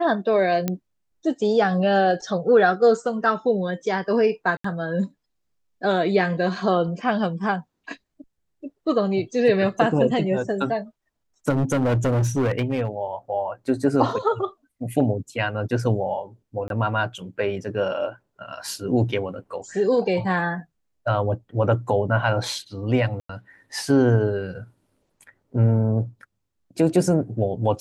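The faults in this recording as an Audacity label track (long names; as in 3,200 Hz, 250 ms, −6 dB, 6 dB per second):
0.680000	0.680000	click −10 dBFS
4.570000	4.640000	drop-out 74 ms
11.490000	12.880000	clipping −17.5 dBFS
16.680000	16.700000	drop-out 22 ms
23.200000	23.290000	drop-out 94 ms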